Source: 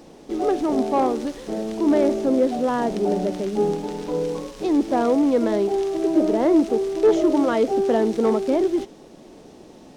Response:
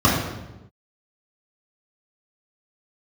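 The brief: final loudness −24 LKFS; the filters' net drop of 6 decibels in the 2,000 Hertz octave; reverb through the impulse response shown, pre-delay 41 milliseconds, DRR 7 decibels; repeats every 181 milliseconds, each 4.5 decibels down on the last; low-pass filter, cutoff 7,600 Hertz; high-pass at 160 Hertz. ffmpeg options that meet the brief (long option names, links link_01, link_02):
-filter_complex "[0:a]highpass=160,lowpass=7600,equalizer=frequency=2000:width_type=o:gain=-8,aecho=1:1:181|362|543|724|905|1086|1267|1448|1629:0.596|0.357|0.214|0.129|0.0772|0.0463|0.0278|0.0167|0.01,asplit=2[link_01][link_02];[1:a]atrim=start_sample=2205,adelay=41[link_03];[link_02][link_03]afir=irnorm=-1:irlink=0,volume=-29dB[link_04];[link_01][link_04]amix=inputs=2:normalize=0,volume=-6dB"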